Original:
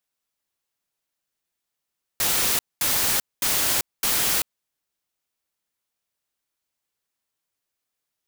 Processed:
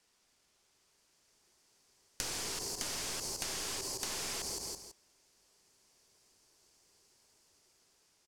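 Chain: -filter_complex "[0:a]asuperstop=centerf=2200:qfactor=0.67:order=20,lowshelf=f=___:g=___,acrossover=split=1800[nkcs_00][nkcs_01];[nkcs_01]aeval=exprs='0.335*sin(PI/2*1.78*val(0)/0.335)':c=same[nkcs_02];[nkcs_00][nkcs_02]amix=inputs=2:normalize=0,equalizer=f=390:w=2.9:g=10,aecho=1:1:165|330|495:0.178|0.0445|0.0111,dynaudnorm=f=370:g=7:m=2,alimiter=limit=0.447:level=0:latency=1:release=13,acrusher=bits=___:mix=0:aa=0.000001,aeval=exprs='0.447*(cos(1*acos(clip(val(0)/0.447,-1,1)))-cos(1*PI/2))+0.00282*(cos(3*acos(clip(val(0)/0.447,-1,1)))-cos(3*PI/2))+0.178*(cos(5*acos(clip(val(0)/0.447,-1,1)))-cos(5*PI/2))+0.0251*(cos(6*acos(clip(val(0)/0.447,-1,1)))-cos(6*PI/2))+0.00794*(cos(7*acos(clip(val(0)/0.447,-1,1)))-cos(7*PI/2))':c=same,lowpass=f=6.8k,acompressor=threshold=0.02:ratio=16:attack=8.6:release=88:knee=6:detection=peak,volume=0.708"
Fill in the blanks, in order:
150, 6, 11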